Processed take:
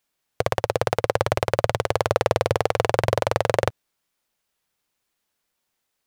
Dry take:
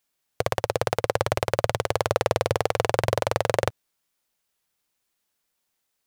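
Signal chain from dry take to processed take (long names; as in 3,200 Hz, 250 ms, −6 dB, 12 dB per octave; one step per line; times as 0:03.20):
high-shelf EQ 4,700 Hz −4.5 dB
level +2.5 dB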